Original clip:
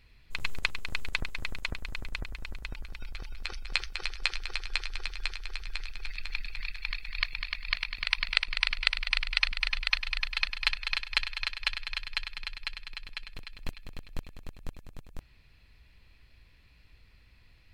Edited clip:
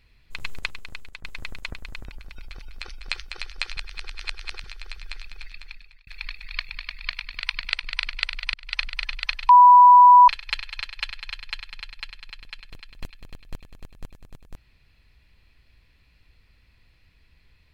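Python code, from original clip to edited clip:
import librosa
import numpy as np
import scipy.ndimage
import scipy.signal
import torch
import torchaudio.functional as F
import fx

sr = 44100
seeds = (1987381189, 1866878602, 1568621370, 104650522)

y = fx.edit(x, sr, fx.fade_out_to(start_s=0.61, length_s=0.63, floor_db=-15.5),
    fx.cut(start_s=2.05, length_s=0.64),
    fx.reverse_span(start_s=4.41, length_s=0.87),
    fx.fade_out_span(start_s=5.93, length_s=0.78),
    fx.fade_in_span(start_s=9.18, length_s=0.26),
    fx.bleep(start_s=10.13, length_s=0.79, hz=985.0, db=-7.0), tone=tone)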